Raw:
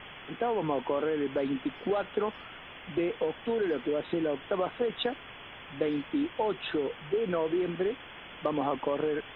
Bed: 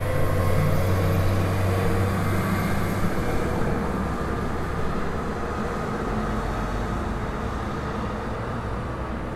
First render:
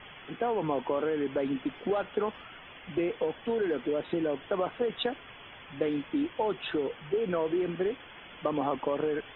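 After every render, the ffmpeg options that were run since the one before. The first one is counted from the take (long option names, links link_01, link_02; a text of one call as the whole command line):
ffmpeg -i in.wav -af "afftdn=noise_reduction=7:noise_floor=-47" out.wav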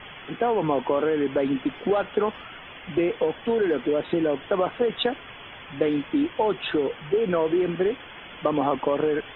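ffmpeg -i in.wav -af "volume=6.5dB" out.wav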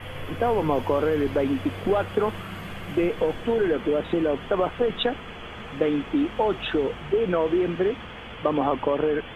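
ffmpeg -i in.wav -i bed.wav -filter_complex "[1:a]volume=-13.5dB[link_01];[0:a][link_01]amix=inputs=2:normalize=0" out.wav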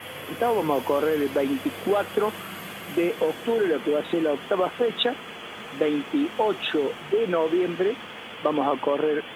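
ffmpeg -i in.wav -af "highpass=200,aemphasis=mode=production:type=50kf" out.wav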